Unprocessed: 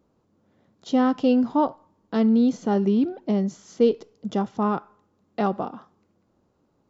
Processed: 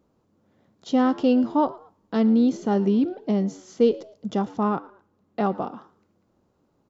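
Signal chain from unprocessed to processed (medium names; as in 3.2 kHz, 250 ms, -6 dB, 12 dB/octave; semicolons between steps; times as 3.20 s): 4.69–5.55 s: treble shelf 4 kHz -7 dB; frequency-shifting echo 113 ms, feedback 32%, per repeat +88 Hz, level -21.5 dB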